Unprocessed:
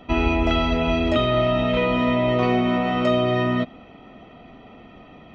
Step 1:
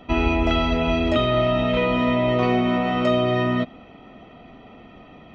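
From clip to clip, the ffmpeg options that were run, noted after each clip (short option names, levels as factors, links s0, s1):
-af anull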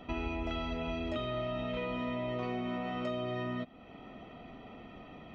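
-af "acompressor=threshold=0.0126:ratio=2,volume=0.596"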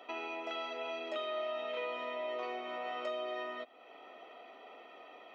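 -af "highpass=f=420:w=0.5412,highpass=f=420:w=1.3066"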